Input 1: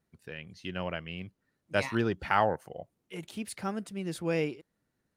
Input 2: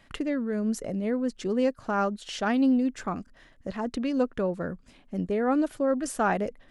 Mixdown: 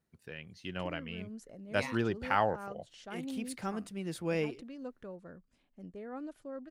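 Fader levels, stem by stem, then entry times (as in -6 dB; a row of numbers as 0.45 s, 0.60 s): -3.0 dB, -18.0 dB; 0.00 s, 0.65 s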